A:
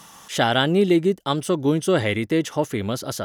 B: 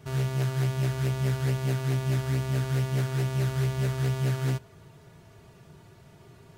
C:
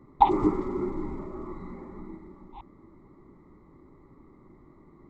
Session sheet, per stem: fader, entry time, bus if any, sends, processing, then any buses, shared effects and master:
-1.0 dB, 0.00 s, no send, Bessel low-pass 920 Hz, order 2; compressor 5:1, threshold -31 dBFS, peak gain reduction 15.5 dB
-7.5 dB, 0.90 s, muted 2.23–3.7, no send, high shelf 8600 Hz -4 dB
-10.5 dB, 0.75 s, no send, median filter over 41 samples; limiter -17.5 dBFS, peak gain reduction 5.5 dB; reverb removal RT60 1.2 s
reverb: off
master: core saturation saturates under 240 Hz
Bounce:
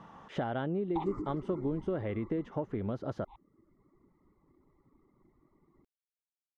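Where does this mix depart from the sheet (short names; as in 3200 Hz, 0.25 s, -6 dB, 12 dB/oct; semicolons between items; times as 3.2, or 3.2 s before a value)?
stem B: muted; stem C: missing median filter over 41 samples; master: missing core saturation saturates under 240 Hz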